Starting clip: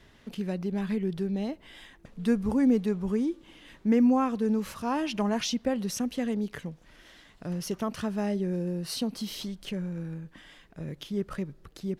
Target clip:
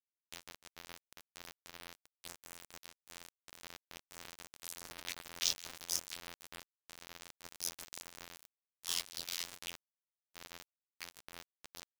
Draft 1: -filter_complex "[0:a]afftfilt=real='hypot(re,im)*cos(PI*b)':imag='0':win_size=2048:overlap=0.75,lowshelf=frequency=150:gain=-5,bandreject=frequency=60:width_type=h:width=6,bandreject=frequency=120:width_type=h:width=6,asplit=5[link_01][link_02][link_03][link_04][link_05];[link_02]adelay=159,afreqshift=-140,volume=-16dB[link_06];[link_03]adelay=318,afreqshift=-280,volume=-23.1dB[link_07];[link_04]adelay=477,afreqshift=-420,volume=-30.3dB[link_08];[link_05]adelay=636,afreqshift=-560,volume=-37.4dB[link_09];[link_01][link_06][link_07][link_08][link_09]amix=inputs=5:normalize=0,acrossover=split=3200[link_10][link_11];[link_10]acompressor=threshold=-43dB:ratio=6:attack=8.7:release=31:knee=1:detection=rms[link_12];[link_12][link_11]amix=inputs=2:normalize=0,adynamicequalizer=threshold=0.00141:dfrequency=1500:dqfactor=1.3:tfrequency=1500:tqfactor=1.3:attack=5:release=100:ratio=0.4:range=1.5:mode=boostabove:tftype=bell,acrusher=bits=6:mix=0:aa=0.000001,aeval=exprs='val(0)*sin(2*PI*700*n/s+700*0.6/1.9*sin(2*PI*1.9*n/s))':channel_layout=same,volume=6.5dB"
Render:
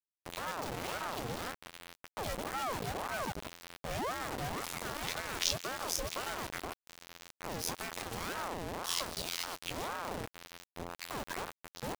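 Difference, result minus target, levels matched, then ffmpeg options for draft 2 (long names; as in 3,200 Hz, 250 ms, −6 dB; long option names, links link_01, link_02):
downward compressor: peak gain reduction −9.5 dB
-filter_complex "[0:a]afftfilt=real='hypot(re,im)*cos(PI*b)':imag='0':win_size=2048:overlap=0.75,lowshelf=frequency=150:gain=-5,bandreject=frequency=60:width_type=h:width=6,bandreject=frequency=120:width_type=h:width=6,asplit=5[link_01][link_02][link_03][link_04][link_05];[link_02]adelay=159,afreqshift=-140,volume=-16dB[link_06];[link_03]adelay=318,afreqshift=-280,volume=-23.1dB[link_07];[link_04]adelay=477,afreqshift=-420,volume=-30.3dB[link_08];[link_05]adelay=636,afreqshift=-560,volume=-37.4dB[link_09];[link_01][link_06][link_07][link_08][link_09]amix=inputs=5:normalize=0,acrossover=split=3200[link_10][link_11];[link_10]acompressor=threshold=-54.5dB:ratio=6:attack=8.7:release=31:knee=1:detection=rms[link_12];[link_12][link_11]amix=inputs=2:normalize=0,adynamicequalizer=threshold=0.00141:dfrequency=1500:dqfactor=1.3:tfrequency=1500:tqfactor=1.3:attack=5:release=100:ratio=0.4:range=1.5:mode=boostabove:tftype=bell,acrusher=bits=6:mix=0:aa=0.000001,aeval=exprs='val(0)*sin(2*PI*700*n/s+700*0.6/1.9*sin(2*PI*1.9*n/s))':channel_layout=same,volume=6.5dB"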